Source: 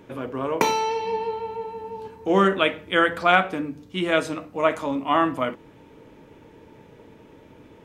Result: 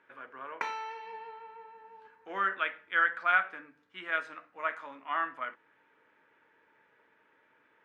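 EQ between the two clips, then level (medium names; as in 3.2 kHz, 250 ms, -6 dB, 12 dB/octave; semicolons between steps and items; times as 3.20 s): band-pass filter 1.6 kHz, Q 3.1; -2.5 dB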